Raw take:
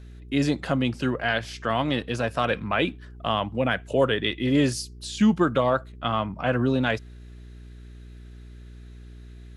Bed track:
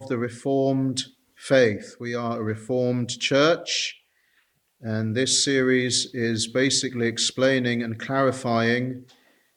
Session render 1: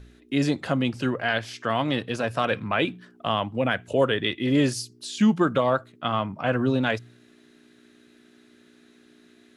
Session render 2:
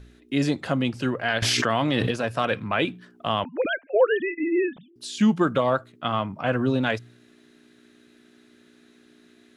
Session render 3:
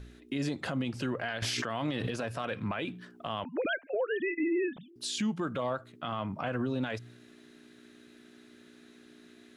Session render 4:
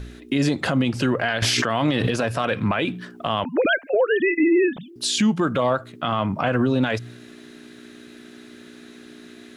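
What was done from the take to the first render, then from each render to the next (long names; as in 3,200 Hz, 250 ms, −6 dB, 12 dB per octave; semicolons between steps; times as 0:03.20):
hum removal 60 Hz, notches 3
0:01.42–0:02.11: envelope flattener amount 100%; 0:03.44–0:04.96: three sine waves on the formant tracks
downward compressor 6 to 1, threshold −26 dBFS, peak gain reduction 12.5 dB; brickwall limiter −23.5 dBFS, peak gain reduction 9.5 dB
level +12 dB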